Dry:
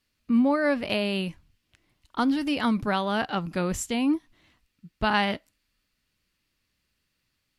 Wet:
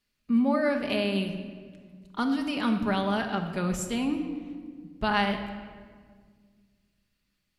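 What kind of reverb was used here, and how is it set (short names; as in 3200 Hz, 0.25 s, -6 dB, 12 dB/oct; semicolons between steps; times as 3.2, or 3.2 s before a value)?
shoebox room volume 2400 m³, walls mixed, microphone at 1.3 m; gain -4 dB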